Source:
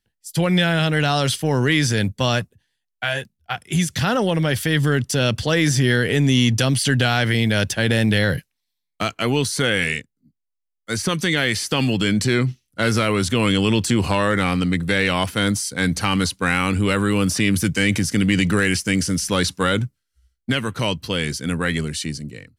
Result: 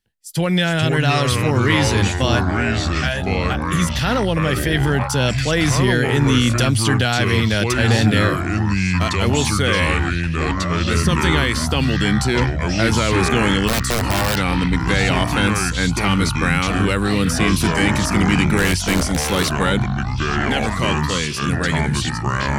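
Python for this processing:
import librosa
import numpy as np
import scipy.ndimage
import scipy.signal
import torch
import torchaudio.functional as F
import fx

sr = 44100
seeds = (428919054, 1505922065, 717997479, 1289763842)

y = fx.overflow_wrap(x, sr, gain_db=13.0, at=(13.67, 14.36), fade=0.02)
y = fx.echo_pitch(y, sr, ms=322, semitones=-5, count=3, db_per_echo=-3.0)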